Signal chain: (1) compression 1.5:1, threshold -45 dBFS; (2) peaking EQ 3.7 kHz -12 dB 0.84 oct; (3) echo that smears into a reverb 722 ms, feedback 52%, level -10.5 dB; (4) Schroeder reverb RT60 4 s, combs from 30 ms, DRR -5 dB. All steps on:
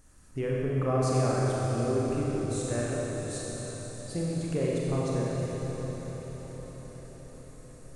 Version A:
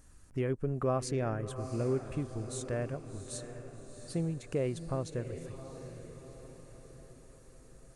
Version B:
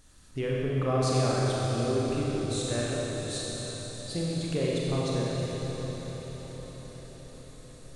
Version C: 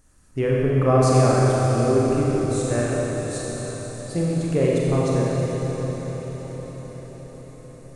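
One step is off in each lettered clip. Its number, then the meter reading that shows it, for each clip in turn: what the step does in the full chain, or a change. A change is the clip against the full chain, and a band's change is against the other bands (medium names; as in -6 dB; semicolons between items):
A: 4, momentary loudness spread change +1 LU; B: 2, 4 kHz band +9.0 dB; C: 1, mean gain reduction 5.5 dB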